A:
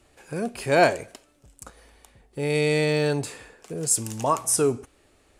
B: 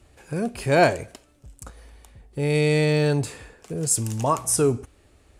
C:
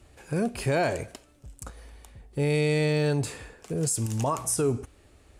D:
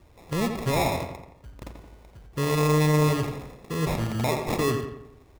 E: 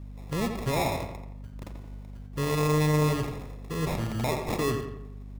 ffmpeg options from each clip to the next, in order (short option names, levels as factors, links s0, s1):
-af "equalizer=f=67:w=0.51:g=10.5"
-af "alimiter=limit=0.141:level=0:latency=1:release=94"
-filter_complex "[0:a]acrusher=samples=29:mix=1:aa=0.000001,asplit=2[s0][s1];[s1]adelay=86,lowpass=f=3000:p=1,volume=0.501,asplit=2[s2][s3];[s3]adelay=86,lowpass=f=3000:p=1,volume=0.5,asplit=2[s4][s5];[s5]adelay=86,lowpass=f=3000:p=1,volume=0.5,asplit=2[s6][s7];[s7]adelay=86,lowpass=f=3000:p=1,volume=0.5,asplit=2[s8][s9];[s9]adelay=86,lowpass=f=3000:p=1,volume=0.5,asplit=2[s10][s11];[s11]adelay=86,lowpass=f=3000:p=1,volume=0.5[s12];[s2][s4][s6][s8][s10][s12]amix=inputs=6:normalize=0[s13];[s0][s13]amix=inputs=2:normalize=0"
-af "aeval=exprs='val(0)+0.0141*(sin(2*PI*50*n/s)+sin(2*PI*2*50*n/s)/2+sin(2*PI*3*50*n/s)/3+sin(2*PI*4*50*n/s)/4+sin(2*PI*5*50*n/s)/5)':c=same,volume=0.708"